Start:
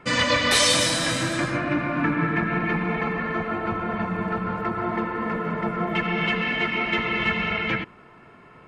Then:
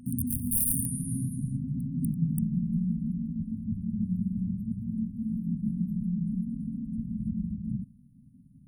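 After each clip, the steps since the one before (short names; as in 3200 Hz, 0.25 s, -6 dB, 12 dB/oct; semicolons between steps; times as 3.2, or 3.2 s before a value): wrapped overs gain 11 dB; reverse echo 0.243 s -18.5 dB; FFT band-reject 270–8900 Hz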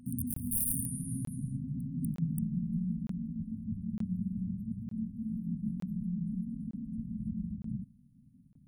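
crackling interface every 0.91 s, samples 1024, zero, from 0.34; gain -5 dB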